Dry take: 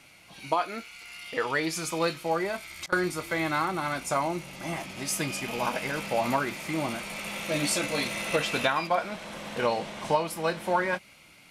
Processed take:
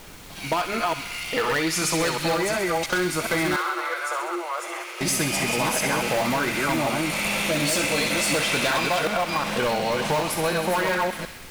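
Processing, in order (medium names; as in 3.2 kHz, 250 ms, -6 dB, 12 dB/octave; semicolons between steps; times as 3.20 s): chunks repeated in reverse 363 ms, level -3 dB; waveshaping leveller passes 2; added noise pink -46 dBFS; in parallel at -11.5 dB: integer overflow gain 14.5 dB; on the sum: compression, threshold -21 dBFS, peak gain reduction 6 dB; 3.56–5.01 s: rippled Chebyshev high-pass 340 Hz, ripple 9 dB; on a send: feedback echo behind a high-pass 65 ms, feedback 69%, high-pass 1.6 kHz, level -7 dB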